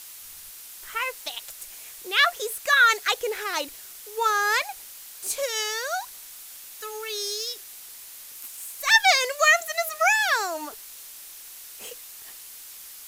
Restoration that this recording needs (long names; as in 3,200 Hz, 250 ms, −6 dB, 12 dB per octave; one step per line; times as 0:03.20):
noise reduction from a noise print 26 dB